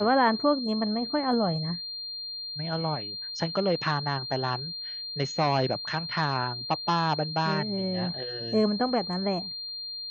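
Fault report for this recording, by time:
whine 4.2 kHz -34 dBFS

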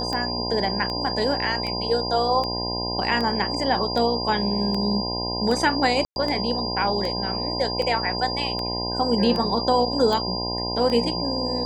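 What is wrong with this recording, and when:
buzz 60 Hz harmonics 17 -30 dBFS
tick 78 rpm -16 dBFS
whine 4.8 kHz -28 dBFS
6.05–6.16 s: dropout 111 ms

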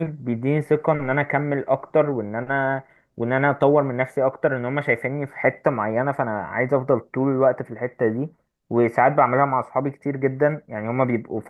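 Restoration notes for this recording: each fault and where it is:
no faults

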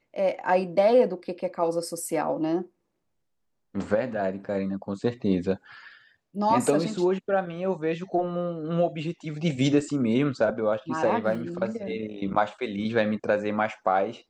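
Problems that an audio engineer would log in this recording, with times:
11.35 s: dropout 2.7 ms

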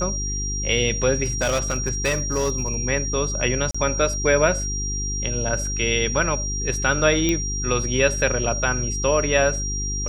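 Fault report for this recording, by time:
hum 50 Hz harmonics 8 -28 dBFS
whine 5.7 kHz -27 dBFS
1.24–2.79 s: clipped -17 dBFS
3.71–3.75 s: dropout 35 ms
7.29 s: pop -8 dBFS

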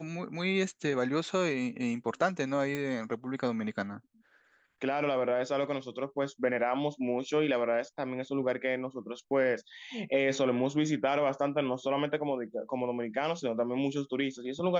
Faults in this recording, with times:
2.75 s: pop -20 dBFS

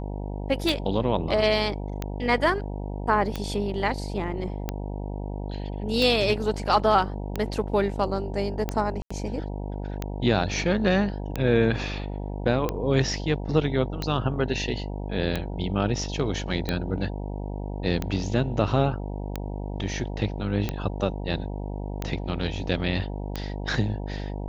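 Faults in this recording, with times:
buzz 50 Hz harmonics 19 -32 dBFS
tick 45 rpm
9.02–9.11 s: dropout 85 ms

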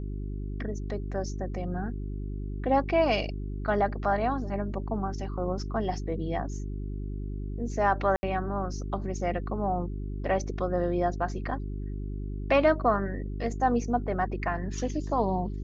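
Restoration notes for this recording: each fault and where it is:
hum 50 Hz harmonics 8 -34 dBFS
8.16–8.23 s: dropout 70 ms

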